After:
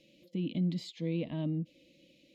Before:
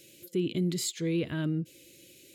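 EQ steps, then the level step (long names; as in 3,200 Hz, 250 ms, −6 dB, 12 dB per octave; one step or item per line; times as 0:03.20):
high-frequency loss of the air 270 metres
phaser with its sweep stopped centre 390 Hz, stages 6
+1.0 dB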